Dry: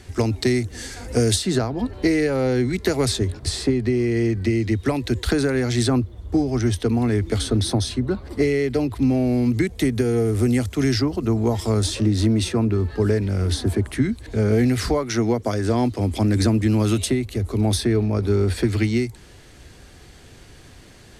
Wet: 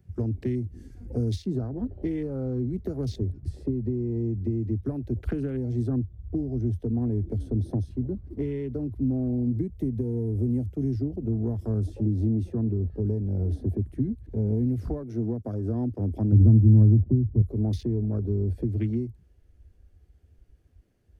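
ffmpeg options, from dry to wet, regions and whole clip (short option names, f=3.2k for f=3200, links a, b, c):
-filter_complex "[0:a]asettb=1/sr,asplit=3[a][b][c];[a]atrim=end=16.324[d];[b]atrim=start=16.32:end=17.42,asetpts=PTS-STARTPTS,afade=t=in:d=0.004:c=qsin,afade=t=out:st=1.096:d=0.004:c=qsin,lowpass=f=1.1k:w=0.5412,lowpass=f=1.1k:w=1.3066,equalizer=f=110:w=0.71:g=11[e];[c]atrim=start=17.416[f];[d][e]acrossfade=d=0.004:c1=hsin:c2=qsin[g];[g][f]acrossfade=d=0.004:c1=qsin:c2=hsin,afwtdn=0.0398,equalizer=f=1k:t=o:w=1:g=-8,equalizer=f=2k:t=o:w=1:g=-6,equalizer=f=4k:t=o:w=1:g=-11,equalizer=f=8k:t=o:w=1:g=-11,acrossover=split=280|3000[h][i][j];[i]acompressor=threshold=-31dB:ratio=6[k];[h][k][j]amix=inputs=3:normalize=0,volume=-4.5dB"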